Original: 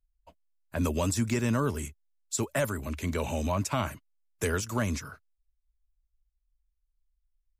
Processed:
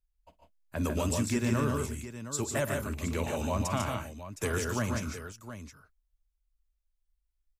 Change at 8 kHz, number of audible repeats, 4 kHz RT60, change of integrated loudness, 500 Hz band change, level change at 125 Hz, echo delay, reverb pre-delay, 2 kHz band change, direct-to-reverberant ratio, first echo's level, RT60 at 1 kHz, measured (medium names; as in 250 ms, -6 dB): -1.0 dB, 3, no reverb, -1.5 dB, -1.0 dB, -1.0 dB, 49 ms, no reverb, -1.0 dB, no reverb, -18.0 dB, no reverb